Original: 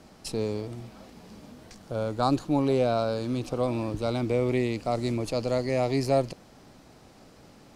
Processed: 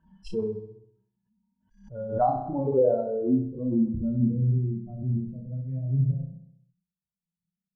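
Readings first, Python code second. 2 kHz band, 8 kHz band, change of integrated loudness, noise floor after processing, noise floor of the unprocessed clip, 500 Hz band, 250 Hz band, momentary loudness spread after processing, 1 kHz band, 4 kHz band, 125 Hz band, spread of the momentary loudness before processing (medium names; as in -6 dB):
under -20 dB, under -20 dB, +0.5 dB, under -85 dBFS, -54 dBFS, -1.5 dB, +1.0 dB, 12 LU, 0.0 dB, under -20 dB, +4.5 dB, 11 LU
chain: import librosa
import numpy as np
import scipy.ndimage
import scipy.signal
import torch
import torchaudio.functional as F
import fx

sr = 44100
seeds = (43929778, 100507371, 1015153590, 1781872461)

y = fx.bin_expand(x, sr, power=3.0)
y = fx.over_compress(y, sr, threshold_db=-31.0, ratio=-0.5)
y = fx.doubler(y, sr, ms=31.0, db=-3)
y = fx.filter_sweep_lowpass(y, sr, from_hz=970.0, to_hz=170.0, start_s=1.72, end_s=4.52, q=6.8)
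y = fx.echo_feedback(y, sr, ms=65, feedback_pct=55, wet_db=-7.5)
y = fx.pre_swell(y, sr, db_per_s=110.0)
y = y * librosa.db_to_amplitude(1.5)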